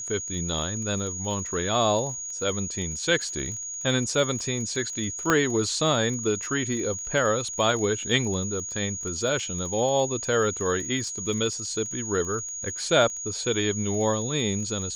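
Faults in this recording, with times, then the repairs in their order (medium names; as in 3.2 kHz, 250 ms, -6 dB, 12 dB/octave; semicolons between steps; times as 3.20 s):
crackle 25 per s -33 dBFS
whine 6.7 kHz -32 dBFS
5.30 s: pop -6 dBFS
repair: de-click; band-stop 6.7 kHz, Q 30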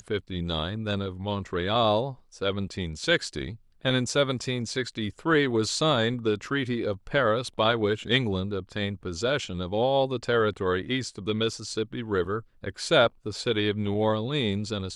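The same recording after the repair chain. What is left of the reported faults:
nothing left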